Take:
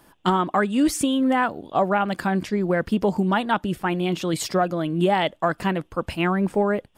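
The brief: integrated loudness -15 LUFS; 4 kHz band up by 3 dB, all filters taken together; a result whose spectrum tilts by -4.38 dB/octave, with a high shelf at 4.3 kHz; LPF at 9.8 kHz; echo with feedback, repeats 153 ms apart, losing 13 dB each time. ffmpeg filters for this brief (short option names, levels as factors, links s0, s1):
-af "lowpass=9800,equalizer=f=4000:t=o:g=8,highshelf=f=4300:g=-7,aecho=1:1:153|306|459:0.224|0.0493|0.0108,volume=2.37"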